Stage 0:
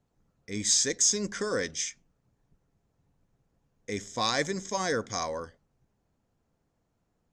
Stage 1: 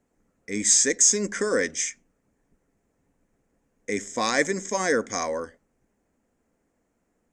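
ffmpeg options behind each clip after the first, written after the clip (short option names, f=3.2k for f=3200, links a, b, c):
-af "equalizer=f=125:t=o:w=1:g=-8,equalizer=f=250:t=o:w=1:g=8,equalizer=f=500:t=o:w=1:g=5,equalizer=f=2k:t=o:w=1:g=9,equalizer=f=4k:t=o:w=1:g=-7,equalizer=f=8k:t=o:w=1:g=10"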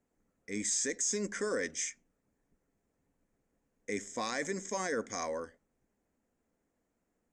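-af "alimiter=limit=-16dB:level=0:latency=1:release=14,volume=-8dB"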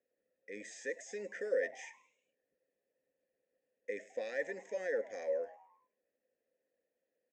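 -filter_complex "[0:a]asplit=3[a][b][c];[a]bandpass=f=530:t=q:w=8,volume=0dB[d];[b]bandpass=f=1.84k:t=q:w=8,volume=-6dB[e];[c]bandpass=f=2.48k:t=q:w=8,volume=-9dB[f];[d][e][f]amix=inputs=3:normalize=0,asplit=5[g][h][i][j][k];[h]adelay=104,afreqshift=130,volume=-20.5dB[l];[i]adelay=208,afreqshift=260,volume=-26.7dB[m];[j]adelay=312,afreqshift=390,volume=-32.9dB[n];[k]adelay=416,afreqshift=520,volume=-39.1dB[o];[g][l][m][n][o]amix=inputs=5:normalize=0,volume=6dB"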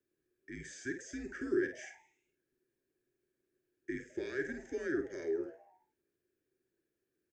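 -filter_complex "[0:a]afreqshift=-150,asplit=2[a][b];[b]adelay=50,volume=-8dB[c];[a][c]amix=inputs=2:normalize=0"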